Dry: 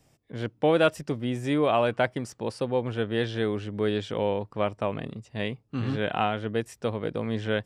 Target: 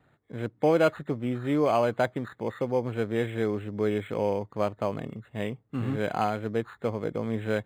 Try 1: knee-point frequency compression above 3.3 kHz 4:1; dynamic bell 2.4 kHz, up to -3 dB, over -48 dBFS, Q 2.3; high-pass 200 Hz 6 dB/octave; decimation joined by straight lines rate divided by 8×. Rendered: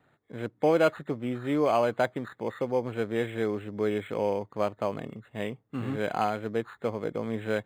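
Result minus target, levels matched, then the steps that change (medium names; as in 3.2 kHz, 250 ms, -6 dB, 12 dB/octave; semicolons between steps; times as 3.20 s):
125 Hz band -3.5 dB
change: high-pass 67 Hz 6 dB/octave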